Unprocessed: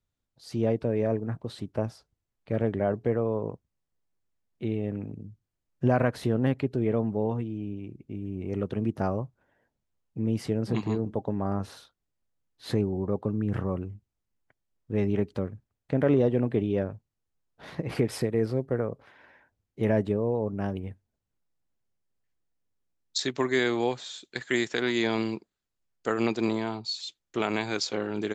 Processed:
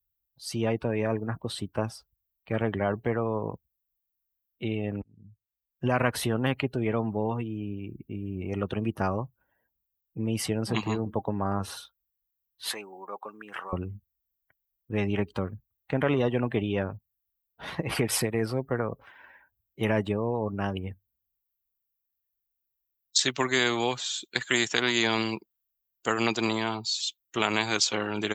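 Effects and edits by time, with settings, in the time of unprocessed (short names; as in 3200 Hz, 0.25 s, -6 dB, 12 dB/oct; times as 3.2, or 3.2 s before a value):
5.02–6.06 fade in linear
12.69–13.73 HPF 1000 Hz
whole clip: per-bin expansion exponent 1.5; HPF 42 Hz; spectral compressor 2:1; gain +6.5 dB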